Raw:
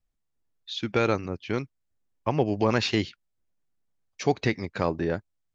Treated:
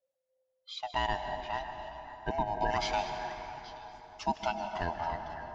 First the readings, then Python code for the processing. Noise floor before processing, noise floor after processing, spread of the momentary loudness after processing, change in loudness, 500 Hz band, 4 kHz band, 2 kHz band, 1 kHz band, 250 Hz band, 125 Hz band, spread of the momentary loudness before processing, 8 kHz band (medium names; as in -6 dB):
-78 dBFS, -81 dBFS, 13 LU, -7.5 dB, -9.5 dB, -6.0 dB, -5.0 dB, +1.5 dB, -15.0 dB, -13.5 dB, 10 LU, no reading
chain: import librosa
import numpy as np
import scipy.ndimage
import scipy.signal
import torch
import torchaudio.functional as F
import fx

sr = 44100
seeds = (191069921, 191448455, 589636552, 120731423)

y = fx.band_swap(x, sr, width_hz=500)
y = fx.echo_stepped(y, sr, ms=276, hz=590.0, octaves=1.4, feedback_pct=70, wet_db=-9)
y = fx.rev_plate(y, sr, seeds[0], rt60_s=4.2, hf_ratio=0.5, predelay_ms=120, drr_db=6.0)
y = y * 10.0 ** (-8.0 / 20.0)